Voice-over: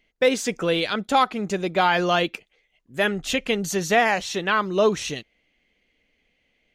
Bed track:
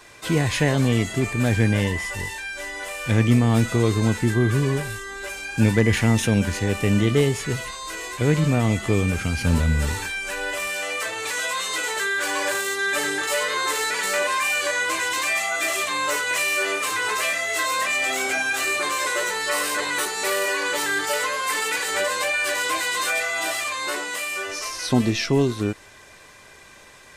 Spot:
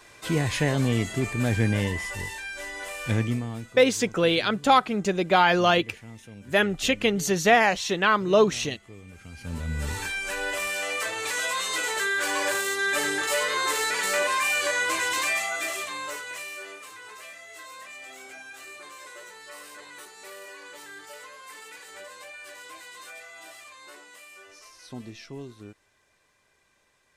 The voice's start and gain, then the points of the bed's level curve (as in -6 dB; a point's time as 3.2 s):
3.55 s, +0.5 dB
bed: 3.11 s -4 dB
3.86 s -25.5 dB
9.03 s -25.5 dB
10.07 s -2 dB
15.24 s -2 dB
16.97 s -20 dB